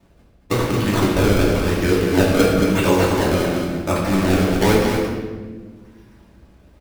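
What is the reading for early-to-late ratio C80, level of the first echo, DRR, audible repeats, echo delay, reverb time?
1.5 dB, -4.5 dB, -8.0 dB, 1, 0.226 s, 1.4 s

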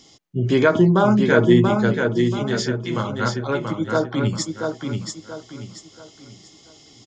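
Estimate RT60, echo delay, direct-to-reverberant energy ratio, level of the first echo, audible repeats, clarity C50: none, 0.683 s, none, -4.5 dB, 4, none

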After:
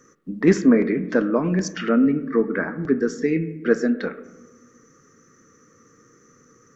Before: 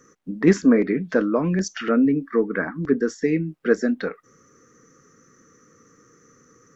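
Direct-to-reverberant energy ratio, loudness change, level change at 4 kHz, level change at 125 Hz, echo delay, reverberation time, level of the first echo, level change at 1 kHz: 11.0 dB, +0.5 dB, 0.0 dB, 0.0 dB, none, 1.1 s, none, 0.0 dB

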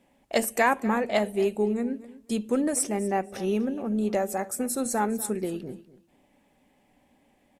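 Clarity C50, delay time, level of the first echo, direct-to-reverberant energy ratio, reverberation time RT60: none, 0.244 s, -17.5 dB, none, none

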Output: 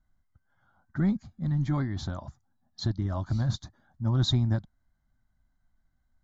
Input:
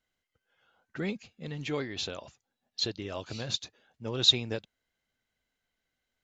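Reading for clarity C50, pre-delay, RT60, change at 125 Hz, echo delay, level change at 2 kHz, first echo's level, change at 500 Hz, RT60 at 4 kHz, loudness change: none, none, none, +14.0 dB, none, -4.5 dB, none, -5.0 dB, none, +1.5 dB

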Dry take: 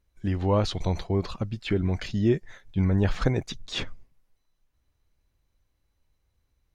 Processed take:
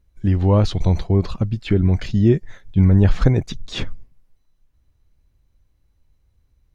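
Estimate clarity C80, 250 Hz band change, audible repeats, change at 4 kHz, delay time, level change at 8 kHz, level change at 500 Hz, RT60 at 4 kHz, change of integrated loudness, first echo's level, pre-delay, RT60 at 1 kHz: none, +8.0 dB, none, +2.0 dB, none, n/a, +5.0 dB, none, +8.5 dB, none, none, none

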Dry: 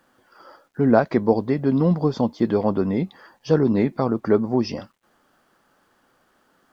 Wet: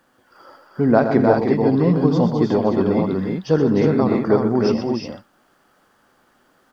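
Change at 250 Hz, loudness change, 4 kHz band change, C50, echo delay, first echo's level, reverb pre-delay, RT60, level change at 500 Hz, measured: +3.5 dB, +3.0 dB, +3.5 dB, none, 82 ms, -14.0 dB, none, none, +3.5 dB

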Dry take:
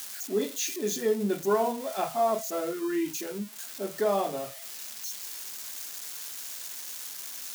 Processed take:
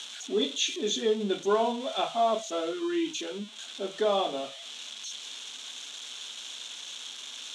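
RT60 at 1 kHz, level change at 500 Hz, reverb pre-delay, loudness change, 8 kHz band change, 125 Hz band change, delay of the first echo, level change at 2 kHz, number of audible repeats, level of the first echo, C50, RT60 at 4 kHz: none, 0.0 dB, none, 0.0 dB, -3.0 dB, n/a, none, +1.0 dB, none, none, none, none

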